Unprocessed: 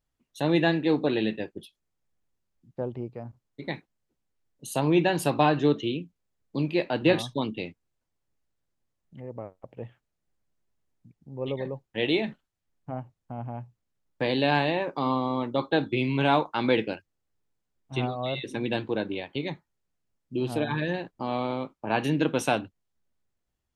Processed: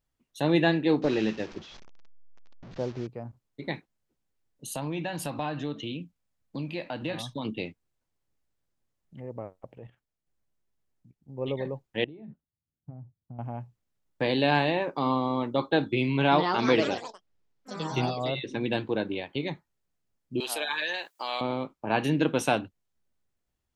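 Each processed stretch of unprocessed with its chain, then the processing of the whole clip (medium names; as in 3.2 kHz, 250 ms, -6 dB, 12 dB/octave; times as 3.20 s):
1.02–3.07 s: one-bit delta coder 32 kbps, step -39 dBFS + tape noise reduction on one side only decoder only
4.74–7.45 s: peaking EQ 390 Hz -13 dB 0.27 oct + compression 2.5:1, threshold -32 dBFS
9.78–11.38 s: level held to a coarse grid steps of 11 dB + doubling 15 ms -13.5 dB
12.04–13.39 s: compression 16:1, threshold -32 dBFS + band-pass filter 120 Hz, Q 0.99
16.10–18.61 s: low-pass 6.1 kHz 24 dB/octave + ever faster or slower copies 217 ms, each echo +4 st, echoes 3, each echo -6 dB
20.40–21.41 s: high-pass 500 Hz + tilt EQ +4.5 dB/octave + three bands compressed up and down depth 40%
whole clip: none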